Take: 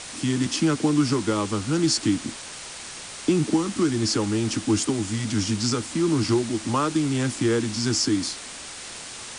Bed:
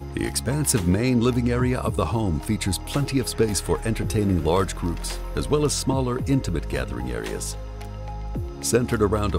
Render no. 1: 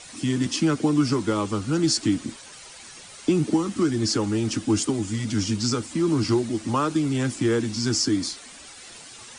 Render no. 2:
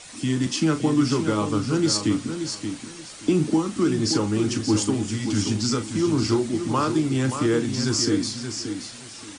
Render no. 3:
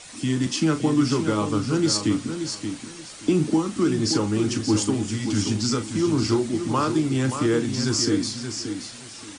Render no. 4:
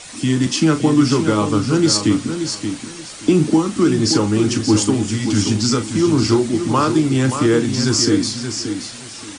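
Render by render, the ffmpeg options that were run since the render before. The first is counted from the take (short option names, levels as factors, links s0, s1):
-af "afftdn=nr=10:nf=-38"
-filter_complex "[0:a]asplit=2[s0][s1];[s1]adelay=38,volume=0.299[s2];[s0][s2]amix=inputs=2:normalize=0,aecho=1:1:577|1154|1731:0.398|0.0876|0.0193"
-af anull
-af "volume=2.11"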